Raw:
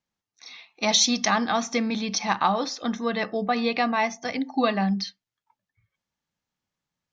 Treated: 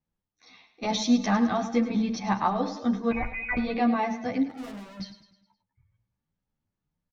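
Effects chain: 3.11–3.57 s: frequency inversion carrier 2.7 kHz; tilt EQ -3.5 dB/octave; de-hum 55.9 Hz, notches 12; 4.49–5.00 s: hard clipper -36 dBFS, distortion -5 dB; feedback delay 104 ms, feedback 47%, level -12 dB; endless flanger 10.8 ms +2.9 Hz; trim -1.5 dB

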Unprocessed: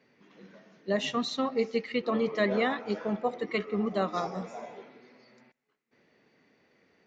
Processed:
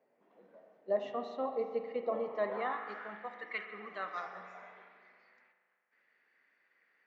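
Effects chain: spring tank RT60 2 s, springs 38 ms, chirp 35 ms, DRR 6.5 dB; band-pass sweep 660 Hz -> 1.7 kHz, 2.19–3.22 s

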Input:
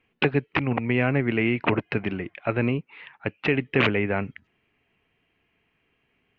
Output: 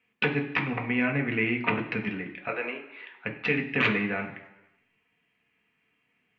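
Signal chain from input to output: 2.48–3.12 s: high-pass 370 Hz 24 dB/octave; reverberation RT60 1.0 s, pre-delay 3 ms, DRR 1 dB; trim -3 dB

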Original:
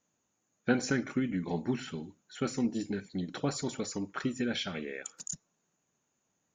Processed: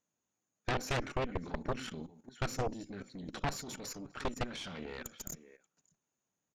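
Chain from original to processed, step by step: echo from a far wall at 100 m, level -18 dB; level held to a coarse grid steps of 15 dB; Chebyshev shaper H 3 -17 dB, 7 -9 dB, 8 -10 dB, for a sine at -18.5 dBFS; trim -3.5 dB

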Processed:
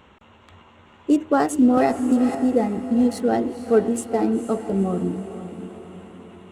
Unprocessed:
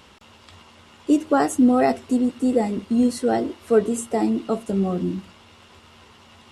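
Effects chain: local Wiener filter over 9 samples; echo that smears into a reverb 477 ms, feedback 51%, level -11 dB; 1.77–2.35 s: three bands compressed up and down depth 100%

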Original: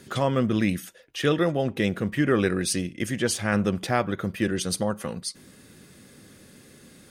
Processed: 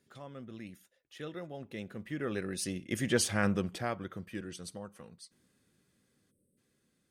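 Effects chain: Doppler pass-by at 3.19 s, 11 m/s, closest 3.1 m; time-frequency box 6.31–6.58 s, 620–7800 Hz -28 dB; trim -3 dB

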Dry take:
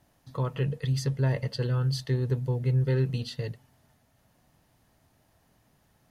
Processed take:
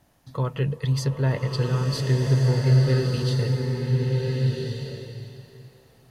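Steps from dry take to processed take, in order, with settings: swelling reverb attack 1420 ms, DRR 0 dB; trim +3.5 dB

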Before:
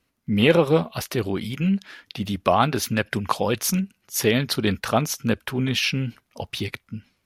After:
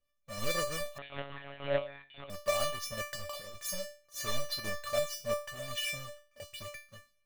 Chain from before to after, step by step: square wave that keeps the level; 3.03–3.62 s: compressor with a negative ratio -22 dBFS, ratio -0.5; phaser 1.7 Hz, delay 1.6 ms, feedback 28%; feedback comb 590 Hz, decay 0.35 s, mix 100%; 0.98–2.30 s: monotone LPC vocoder at 8 kHz 140 Hz; trim +2.5 dB

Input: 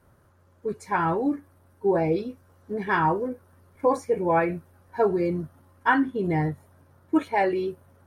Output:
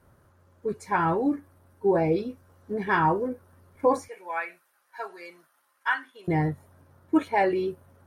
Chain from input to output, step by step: 4.08–6.28 s: high-pass 1.4 kHz 12 dB/octave

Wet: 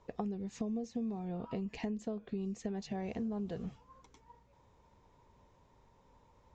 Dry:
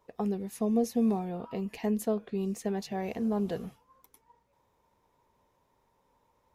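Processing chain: elliptic low-pass 7.3 kHz; bass shelf 190 Hz +10.5 dB; compression 8:1, threshold -39 dBFS, peak gain reduction 18.5 dB; trim +3.5 dB

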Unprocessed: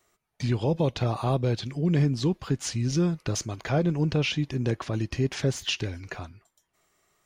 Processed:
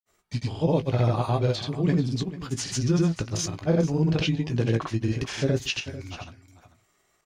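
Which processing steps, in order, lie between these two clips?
granulator, pitch spread up and down by 0 st; doubling 18 ms -9.5 dB; delay 442 ms -15 dB; trim +2 dB

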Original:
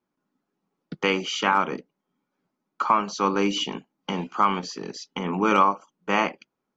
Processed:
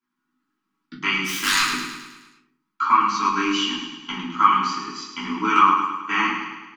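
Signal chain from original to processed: 1.24–1.70 s: self-modulated delay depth 0.97 ms; Chebyshev band-stop 270–1200 Hz, order 2; tone controls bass -14 dB, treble -3 dB; in parallel at 0 dB: level held to a coarse grid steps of 11 dB; on the sum: feedback delay 106 ms, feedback 55%, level -7 dB; simulated room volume 200 m³, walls furnished, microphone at 3 m; trim -4.5 dB

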